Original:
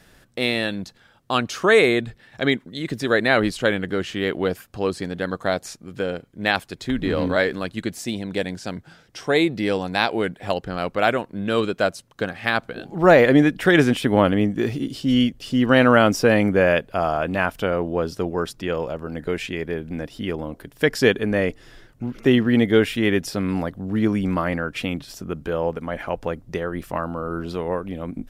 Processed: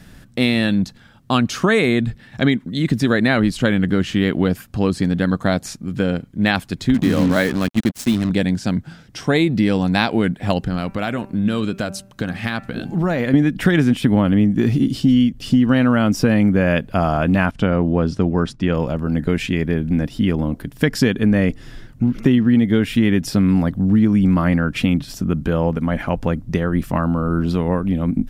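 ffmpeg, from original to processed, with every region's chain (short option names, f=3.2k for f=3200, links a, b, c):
-filter_complex "[0:a]asettb=1/sr,asplit=3[a][b][c];[a]atrim=end=6.944[d];[b]atrim=start=6.94:end=8.3,asetpts=PTS-STARTPTS,afade=t=in:d=0.004:c=qsin,afade=t=out:st=1.356:d=0.004:c=qsin,highpass=110,acrusher=bits=4:mix=0:aa=0.5[e];[c]atrim=start=8.296[f];[d][e]acrossfade=d=0.004:c1=hsin:c2=qsin[g];[g][f]acrossfade=d=0.004:c1=qsin:c2=hsin,asettb=1/sr,asplit=3[h][i][j];[h]atrim=end=10.584[k];[i]atrim=start=10.58:end=13.34,asetpts=PTS-STARTPTS,afade=t=in:d=0.004:c=qsin,afade=t=out:st=2.756:d=0.004:c=qsin,equalizer=f=12k:t=o:w=2.6:g=3.5,acompressor=threshold=-28dB:ratio=2.5:attack=3.2:release=140:knee=1:detection=peak,bandreject=f=194.7:t=h:w=4,bandreject=f=389.4:t=h:w=4,bandreject=f=584.1:t=h:w=4,bandreject=f=778.8:t=h:w=4,bandreject=f=973.5:t=h:w=4,bandreject=f=1.1682k:t=h:w=4,bandreject=f=1.3629k:t=h:w=4,bandreject=f=1.5576k:t=h:w=4,bandreject=f=1.7523k:t=h:w=4,bandreject=f=1.947k:t=h:w=4,bandreject=f=2.1417k:t=h:w=4,bandreject=f=2.3364k:t=h:w=4,bandreject=f=2.5311k:t=h:w=4,bandreject=f=2.7258k:t=h:w=4[l];[j]atrim=start=13.336[m];[k][l]acrossfade=d=0.004:c1=hsin:c2=qsin[n];[n][m]acrossfade=d=0.004:c1=qsin:c2=hsin,asettb=1/sr,asplit=3[o][p][q];[o]atrim=end=17.514[r];[p]atrim=start=17.51:end=18.74,asetpts=PTS-STARTPTS,afade=t=in:d=0.004:c=qsin,afade=t=out:st=1.226:d=0.004:c=qsin,lowpass=f=9.8k:w=0.5412,lowpass=f=9.8k:w=1.3066,agate=range=-33dB:threshold=-43dB:ratio=3:release=100:detection=peak,highshelf=f=6.5k:g=-9.5[s];[q]atrim=start=18.736[t];[r][s]acrossfade=d=0.004:c1=hsin:c2=qsin[u];[u][t]acrossfade=d=0.004:c1=qsin:c2=hsin,lowshelf=f=310:t=q:w=1.5:g=7.5,acompressor=threshold=-16dB:ratio=6,volume=4.5dB"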